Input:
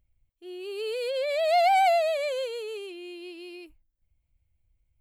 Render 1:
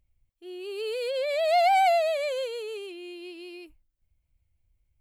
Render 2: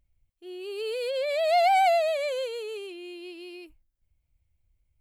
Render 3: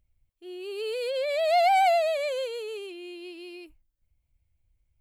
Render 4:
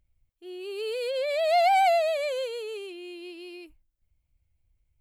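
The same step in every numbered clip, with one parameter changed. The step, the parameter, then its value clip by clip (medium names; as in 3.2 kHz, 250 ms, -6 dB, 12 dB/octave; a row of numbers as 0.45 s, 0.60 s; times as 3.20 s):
vibrato, rate: 6.4 Hz, 0.33 Hz, 16 Hz, 2.4 Hz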